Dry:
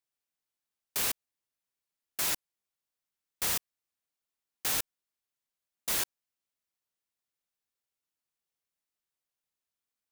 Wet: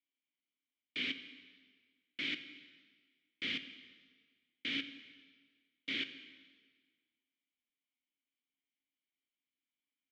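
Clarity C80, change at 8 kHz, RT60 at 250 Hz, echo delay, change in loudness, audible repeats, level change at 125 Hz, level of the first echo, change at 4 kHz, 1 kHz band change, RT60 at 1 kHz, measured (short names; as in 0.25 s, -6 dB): 12.5 dB, -32.5 dB, 1.6 s, none, -8.5 dB, none, -9.5 dB, none, -1.5 dB, -19.5 dB, 1.6 s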